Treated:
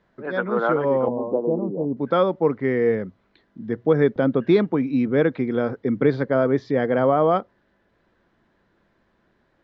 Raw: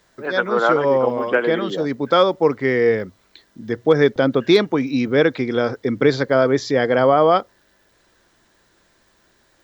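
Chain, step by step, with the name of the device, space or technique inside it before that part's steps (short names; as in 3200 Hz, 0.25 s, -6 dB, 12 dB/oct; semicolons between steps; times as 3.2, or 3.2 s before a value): phone in a pocket (LPF 3100 Hz 12 dB/oct; bell 190 Hz +6 dB 0.97 oct; high shelf 2300 Hz -8 dB); 1.08–1.97 steep low-pass 1000 Hz 72 dB/oct; gain -4 dB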